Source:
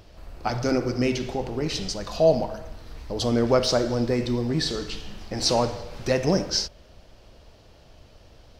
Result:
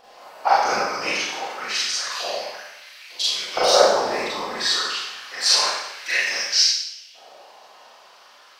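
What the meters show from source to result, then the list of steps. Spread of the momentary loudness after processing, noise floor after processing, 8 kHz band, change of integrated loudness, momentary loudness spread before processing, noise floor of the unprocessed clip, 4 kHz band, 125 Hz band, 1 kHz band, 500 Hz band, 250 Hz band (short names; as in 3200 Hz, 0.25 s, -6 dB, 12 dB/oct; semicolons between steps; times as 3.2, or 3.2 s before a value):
15 LU, -50 dBFS, +9.0 dB, +4.5 dB, 14 LU, -52 dBFS, +9.5 dB, under -20 dB, +9.0 dB, -0.5 dB, -13.5 dB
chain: LFO high-pass saw up 0.28 Hz 720–2900 Hz; whisperiser; Schroeder reverb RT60 0.77 s, combs from 30 ms, DRR -7.5 dB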